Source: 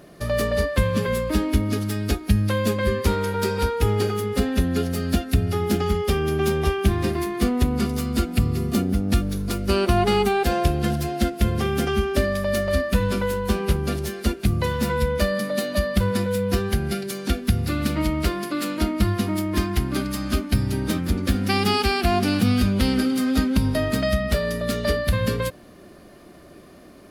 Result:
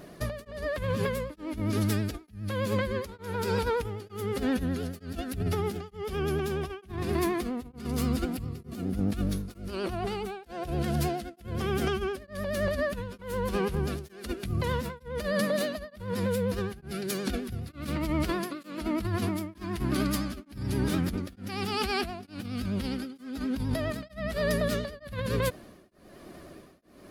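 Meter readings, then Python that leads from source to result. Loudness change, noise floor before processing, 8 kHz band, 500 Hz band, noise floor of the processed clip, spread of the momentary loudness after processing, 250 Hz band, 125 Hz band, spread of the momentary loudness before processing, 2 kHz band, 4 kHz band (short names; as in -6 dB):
-8.5 dB, -46 dBFS, -9.0 dB, -7.5 dB, -54 dBFS, 9 LU, -8.5 dB, -9.0 dB, 5 LU, -8.0 dB, -9.5 dB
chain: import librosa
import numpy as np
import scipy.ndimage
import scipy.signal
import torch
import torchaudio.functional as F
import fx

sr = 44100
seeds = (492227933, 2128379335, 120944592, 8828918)

y = fx.over_compress(x, sr, threshold_db=-25.0, ratio=-1.0)
y = fx.vibrato(y, sr, rate_hz=9.6, depth_cents=77.0)
y = y * np.abs(np.cos(np.pi * 1.1 * np.arange(len(y)) / sr))
y = F.gain(torch.from_numpy(y), -3.0).numpy()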